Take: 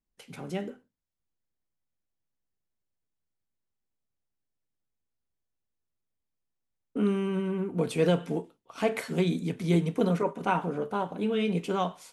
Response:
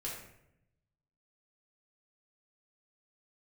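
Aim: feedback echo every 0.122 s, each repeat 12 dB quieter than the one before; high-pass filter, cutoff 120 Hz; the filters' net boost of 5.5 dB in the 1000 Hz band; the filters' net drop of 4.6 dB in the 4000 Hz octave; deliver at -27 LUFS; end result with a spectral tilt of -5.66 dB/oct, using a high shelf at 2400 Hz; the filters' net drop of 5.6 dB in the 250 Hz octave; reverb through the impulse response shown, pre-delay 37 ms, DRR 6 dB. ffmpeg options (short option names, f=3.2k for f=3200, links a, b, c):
-filter_complex "[0:a]highpass=120,equalizer=f=250:t=o:g=-8.5,equalizer=f=1k:t=o:g=8,highshelf=f=2.4k:g=-4,equalizer=f=4k:t=o:g=-3.5,aecho=1:1:122|244|366:0.251|0.0628|0.0157,asplit=2[a][b];[1:a]atrim=start_sample=2205,adelay=37[c];[b][c]afir=irnorm=-1:irlink=0,volume=-6.5dB[d];[a][d]amix=inputs=2:normalize=0,volume=1.5dB"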